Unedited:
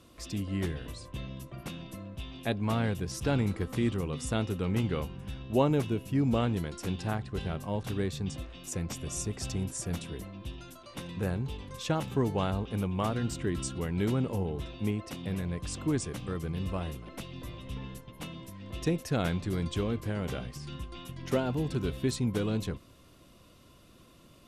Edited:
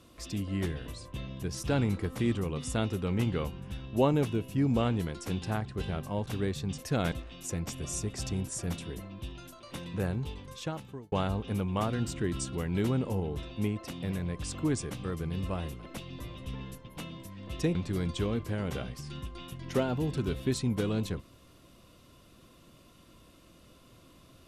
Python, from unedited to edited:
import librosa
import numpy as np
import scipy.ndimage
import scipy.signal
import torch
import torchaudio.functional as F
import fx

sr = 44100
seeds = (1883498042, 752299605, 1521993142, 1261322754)

y = fx.edit(x, sr, fx.cut(start_s=1.42, length_s=1.57),
    fx.fade_out_span(start_s=11.49, length_s=0.86),
    fx.move(start_s=18.98, length_s=0.34, to_s=8.35), tone=tone)